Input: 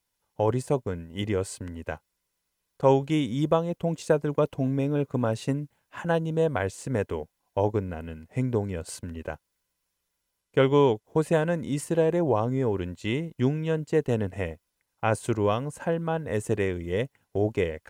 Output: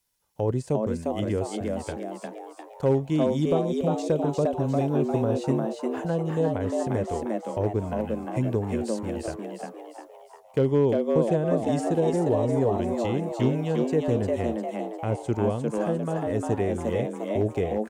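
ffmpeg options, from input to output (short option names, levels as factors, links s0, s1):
-filter_complex "[0:a]acrossover=split=8100[s0][s1];[s1]acompressor=threshold=0.00112:ratio=4:attack=1:release=60[s2];[s0][s2]amix=inputs=2:normalize=0,bass=f=250:g=1,treble=f=4000:g=5,acrossover=split=610[s3][s4];[s4]acompressor=threshold=0.01:ratio=6[s5];[s3][s5]amix=inputs=2:normalize=0,asoftclip=type=hard:threshold=0.188,asplit=7[s6][s7][s8][s9][s10][s11][s12];[s7]adelay=352,afreqshift=110,volume=0.708[s13];[s8]adelay=704,afreqshift=220,volume=0.339[s14];[s9]adelay=1056,afreqshift=330,volume=0.162[s15];[s10]adelay=1408,afreqshift=440,volume=0.0785[s16];[s11]adelay=1760,afreqshift=550,volume=0.0376[s17];[s12]adelay=2112,afreqshift=660,volume=0.018[s18];[s6][s13][s14][s15][s16][s17][s18]amix=inputs=7:normalize=0"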